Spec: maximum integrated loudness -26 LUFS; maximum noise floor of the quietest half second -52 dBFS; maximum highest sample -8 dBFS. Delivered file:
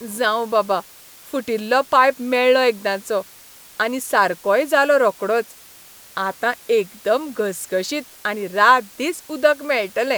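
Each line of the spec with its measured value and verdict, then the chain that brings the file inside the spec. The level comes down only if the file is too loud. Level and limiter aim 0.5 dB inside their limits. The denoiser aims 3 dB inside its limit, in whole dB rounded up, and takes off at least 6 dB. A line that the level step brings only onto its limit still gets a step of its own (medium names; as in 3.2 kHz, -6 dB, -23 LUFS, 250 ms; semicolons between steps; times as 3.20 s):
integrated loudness -19.5 LUFS: fail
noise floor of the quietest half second -45 dBFS: fail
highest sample -3.0 dBFS: fail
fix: noise reduction 6 dB, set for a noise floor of -45 dBFS; trim -7 dB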